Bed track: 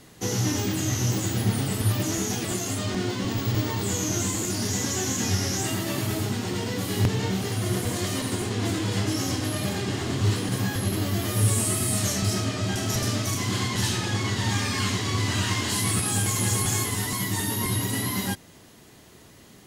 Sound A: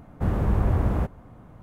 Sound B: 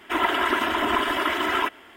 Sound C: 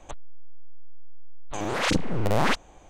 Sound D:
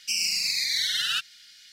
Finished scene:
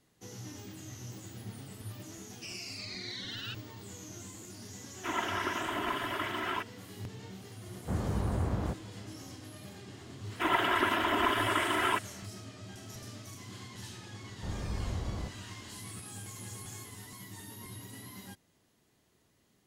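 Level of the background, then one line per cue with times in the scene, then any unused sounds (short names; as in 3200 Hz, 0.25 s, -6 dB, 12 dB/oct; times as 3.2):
bed track -20 dB
2.34 add D -14 dB + LPF 4700 Hz
4.94 add B -11 dB + notch 7300 Hz
7.67 add A -7 dB + HPF 72 Hz
10.3 add B -5.5 dB
14.22 add A -14 dB
not used: C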